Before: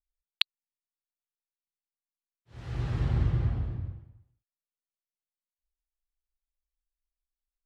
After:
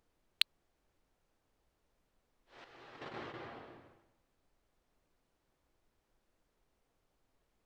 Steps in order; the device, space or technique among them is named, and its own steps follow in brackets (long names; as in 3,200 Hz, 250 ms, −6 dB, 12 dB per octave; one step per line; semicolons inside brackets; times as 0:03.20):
0:02.64–0:03.39: noise gate −26 dBFS, range −10 dB
aircraft cabin announcement (band-pass filter 360–4,100 Hz; soft clipping −14.5 dBFS, distortion −13 dB; brown noise bed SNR 17 dB)
bass and treble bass −12 dB, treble +3 dB